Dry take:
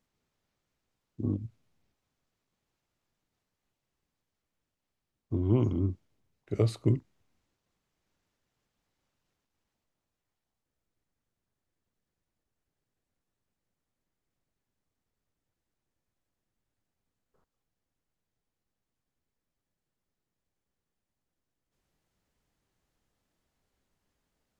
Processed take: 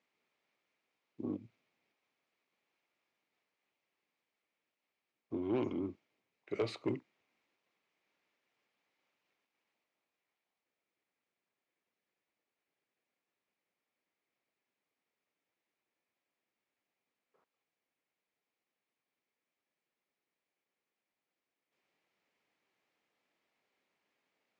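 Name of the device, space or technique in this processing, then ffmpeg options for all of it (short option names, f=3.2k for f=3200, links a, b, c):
intercom: -af "highpass=330,lowpass=4.5k,equalizer=f=2.3k:t=o:w=0.48:g=8,bandreject=f=1.5k:w=25,asoftclip=type=tanh:threshold=-26dB"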